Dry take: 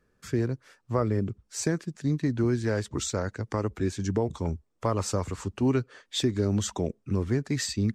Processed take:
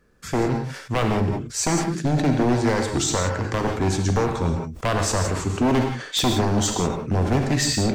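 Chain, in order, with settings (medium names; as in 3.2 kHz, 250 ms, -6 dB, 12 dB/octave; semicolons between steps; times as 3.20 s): wavefolder -22.5 dBFS; gated-style reverb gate 200 ms flat, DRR 3.5 dB; decay stretcher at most 78 dB/s; trim +7.5 dB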